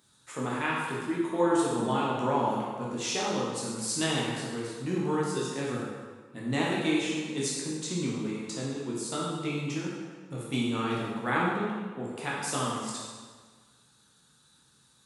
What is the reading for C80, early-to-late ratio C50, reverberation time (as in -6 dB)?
1.5 dB, -1.0 dB, 1.5 s